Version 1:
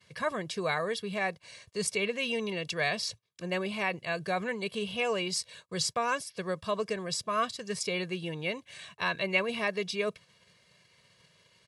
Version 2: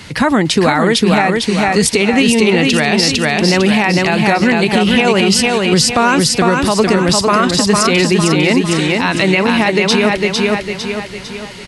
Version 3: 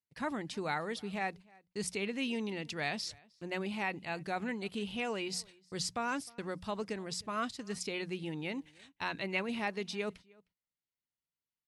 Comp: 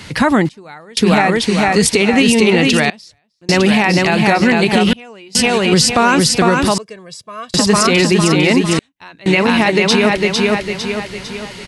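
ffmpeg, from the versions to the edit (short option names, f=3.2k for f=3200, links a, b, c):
-filter_complex "[2:a]asplit=4[a][b][c][d];[1:a]asplit=6[e][f][g][h][i][j];[e]atrim=end=0.492[k];[a]atrim=start=0.488:end=0.972[l];[f]atrim=start=0.968:end=2.902[m];[b]atrim=start=2.898:end=3.492[n];[g]atrim=start=3.488:end=4.932[o];[c]atrim=start=4.928:end=5.352[p];[h]atrim=start=5.348:end=6.782[q];[0:a]atrim=start=6.778:end=7.542[r];[i]atrim=start=7.538:end=8.792[s];[d]atrim=start=8.788:end=9.262[t];[j]atrim=start=9.258[u];[k][l]acrossfade=d=0.004:c1=hsin:c2=hsin[v];[v][m]acrossfade=d=0.004:c1=hsin:c2=hsin[w];[w][n]acrossfade=d=0.004:c1=hsin:c2=hsin[x];[x][o]acrossfade=d=0.004:c1=hsin:c2=hsin[y];[y][p]acrossfade=d=0.004:c1=hsin:c2=hsin[z];[z][q]acrossfade=d=0.004:c1=hsin:c2=hsin[aa];[aa][r]acrossfade=d=0.004:c1=hsin:c2=hsin[ab];[ab][s]acrossfade=d=0.004:c1=hsin:c2=hsin[ac];[ac][t]acrossfade=d=0.004:c1=hsin:c2=hsin[ad];[ad][u]acrossfade=d=0.004:c1=hsin:c2=hsin"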